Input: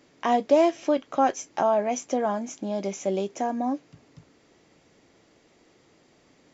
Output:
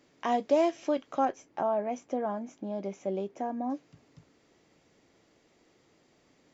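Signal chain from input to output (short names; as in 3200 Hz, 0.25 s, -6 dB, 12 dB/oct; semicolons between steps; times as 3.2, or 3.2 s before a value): 1.25–3.7 LPF 1400 Hz 6 dB/oct; gain -5.5 dB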